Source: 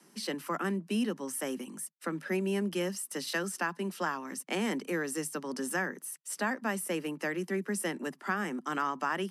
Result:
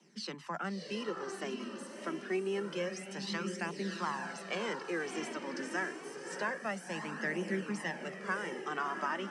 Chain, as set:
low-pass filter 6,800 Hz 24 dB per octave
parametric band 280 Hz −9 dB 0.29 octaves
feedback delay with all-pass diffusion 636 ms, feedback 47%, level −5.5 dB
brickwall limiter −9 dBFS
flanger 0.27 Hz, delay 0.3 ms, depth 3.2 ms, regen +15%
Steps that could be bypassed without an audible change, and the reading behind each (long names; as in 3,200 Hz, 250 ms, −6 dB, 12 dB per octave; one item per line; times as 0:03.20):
brickwall limiter −9 dBFS: peak of its input −17.0 dBFS